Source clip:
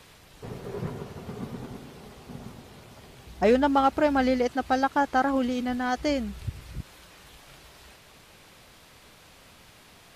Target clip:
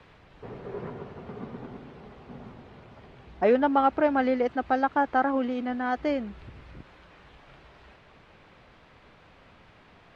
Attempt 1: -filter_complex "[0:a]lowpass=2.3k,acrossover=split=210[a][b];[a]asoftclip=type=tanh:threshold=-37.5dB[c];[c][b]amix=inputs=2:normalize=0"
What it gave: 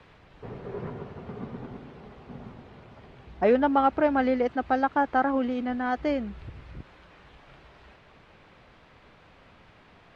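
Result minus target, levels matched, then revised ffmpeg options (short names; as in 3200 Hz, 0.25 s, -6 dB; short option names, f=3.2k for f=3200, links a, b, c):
soft clip: distortion -4 dB
-filter_complex "[0:a]lowpass=2.3k,acrossover=split=210[a][b];[a]asoftclip=type=tanh:threshold=-45dB[c];[c][b]amix=inputs=2:normalize=0"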